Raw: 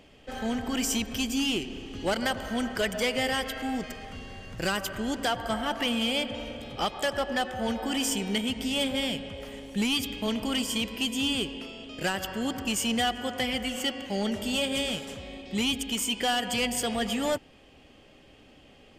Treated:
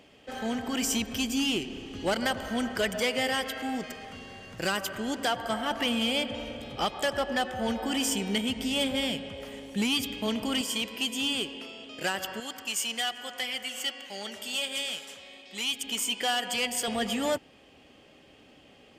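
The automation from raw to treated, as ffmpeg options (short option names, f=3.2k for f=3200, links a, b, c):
-af "asetnsamples=n=441:p=0,asendcmd='0.82 highpass f 64;3 highpass f 180;5.71 highpass f 47;9.12 highpass f 100;10.61 highpass f 360;12.4 highpass f 1500;15.84 highpass f 520;16.88 highpass f 130',highpass=f=160:p=1"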